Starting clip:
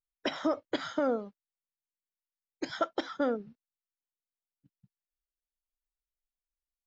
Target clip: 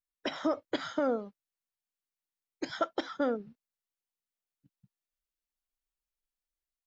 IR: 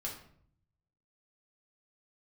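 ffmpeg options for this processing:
-af "dynaudnorm=f=110:g=5:m=4dB,volume=-4.5dB"

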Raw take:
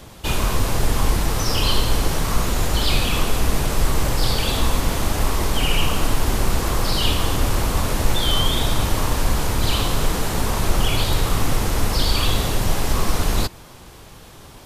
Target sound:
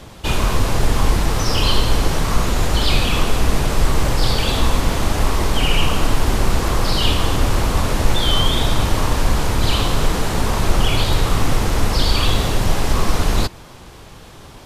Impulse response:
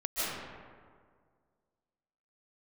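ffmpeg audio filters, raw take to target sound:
-af "highshelf=f=10k:g=-10,volume=3dB"

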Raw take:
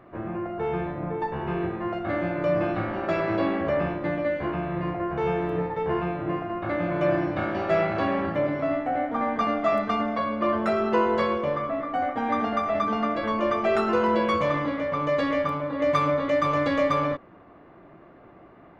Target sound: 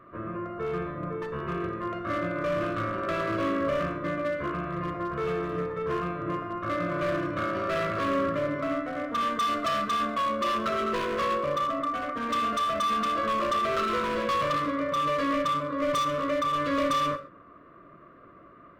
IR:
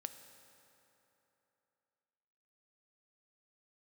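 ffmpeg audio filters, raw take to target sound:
-filter_complex "[0:a]equalizer=f=1.2k:t=o:w=0.5:g=10.5,asplit=3[a][b][c];[a]afade=t=out:st=16.03:d=0.02[d];[b]acompressor=threshold=-17dB:ratio=6,afade=t=in:st=16.03:d=0.02,afade=t=out:st=16.76:d=0.02[e];[c]afade=t=in:st=16.76:d=0.02[f];[d][e][f]amix=inputs=3:normalize=0,volume=20dB,asoftclip=hard,volume=-20dB,asuperstop=centerf=820:order=4:qfactor=2.5[g];[1:a]atrim=start_sample=2205,atrim=end_sample=6174[h];[g][h]afir=irnorm=-1:irlink=0"

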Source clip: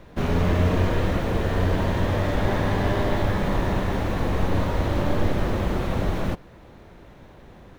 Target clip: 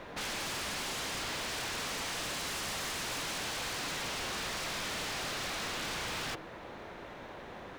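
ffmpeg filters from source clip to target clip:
-filter_complex "[0:a]asplit=2[a][b];[b]highpass=f=720:p=1,volume=19dB,asoftclip=type=tanh:threshold=-8.5dB[c];[a][c]amix=inputs=2:normalize=0,lowpass=f=4k:p=1,volume=-6dB,bandreject=f=161:t=h:w=4,bandreject=f=322:t=h:w=4,aeval=exprs='0.0473*(abs(mod(val(0)/0.0473+3,4)-2)-1)':c=same,volume=-6dB"

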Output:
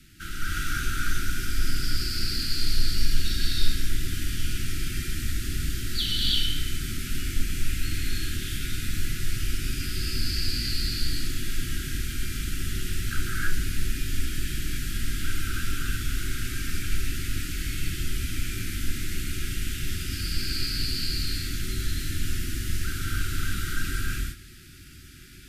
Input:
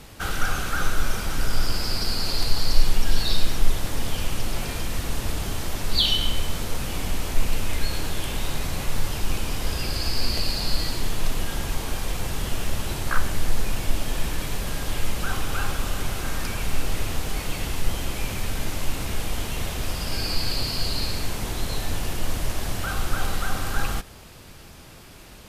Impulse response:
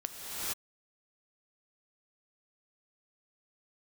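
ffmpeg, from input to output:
-filter_complex "[0:a]asuperstop=centerf=710:order=20:qfactor=0.76[a];[1:a]atrim=start_sample=2205,asetrate=61740,aresample=44100[b];[a][b]afir=irnorm=-1:irlink=0,volume=-4dB"

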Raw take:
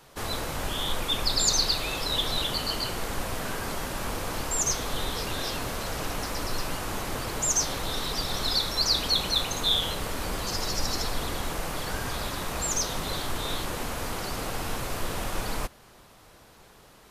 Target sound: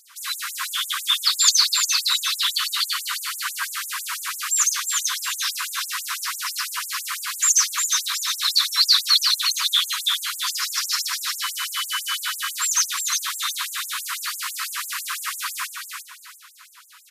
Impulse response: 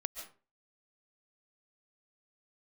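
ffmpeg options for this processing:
-filter_complex "[0:a]flanger=delay=4.6:depth=1.7:regen=62:speed=1.5:shape=sinusoidal,asettb=1/sr,asplit=3[a][b][c];[a]atrim=end=11.424[d];[b]atrim=start=11.42:end=12.21,asetpts=PTS-STARTPTS,afade=t=in:d=0.004:c=qsin,afade=t=out:st=0.786:d=0.004:c=qsin,aeval=exprs='val(0)+0.00794*sin(2*PI*3000*n/s)':c=same[e];[c]atrim=start=12.206[f];[d][e]acrossfade=d=0.004:c1=hsin:c2=qsin[g];[g][f]acrossfade=d=0.004:c1=qsin:c2=hsin,acrossover=split=640[h][i];[i]acontrast=81[j];[h][j]amix=inputs=2:normalize=0,aecho=1:1:357|714|1071|1428:0.562|0.186|0.0612|0.0202,asplit=2[k][l];[1:a]atrim=start_sample=2205,lowpass=2.4k[m];[l][m]afir=irnorm=-1:irlink=0,volume=-5.5dB[n];[k][n]amix=inputs=2:normalize=0,afftfilt=real='re*gte(b*sr/1024,940*pow(7000/940,0.5+0.5*sin(2*PI*6*pts/sr)))':imag='im*gte(b*sr/1024,940*pow(7000/940,0.5+0.5*sin(2*PI*6*pts/sr)))':win_size=1024:overlap=0.75,volume=6dB"

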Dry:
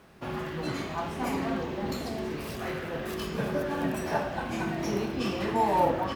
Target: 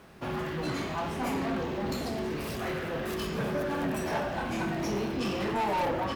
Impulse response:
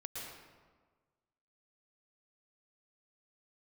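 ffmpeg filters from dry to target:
-af "asoftclip=type=tanh:threshold=-28dB,volume=2.5dB"

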